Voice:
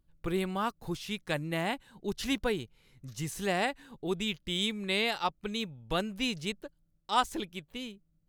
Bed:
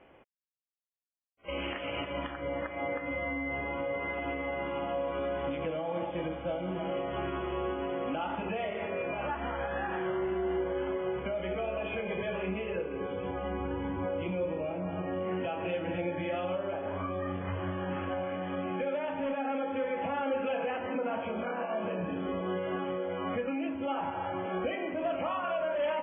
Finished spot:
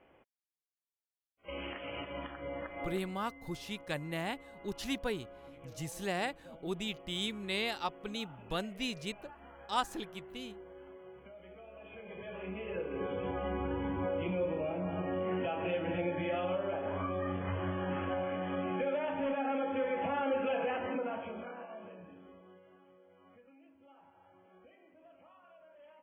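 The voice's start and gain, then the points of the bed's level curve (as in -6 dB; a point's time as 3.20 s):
2.60 s, -5.0 dB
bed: 2.85 s -6 dB
3.15 s -19 dB
11.66 s -19 dB
12.99 s -1 dB
20.84 s -1 dB
22.75 s -28 dB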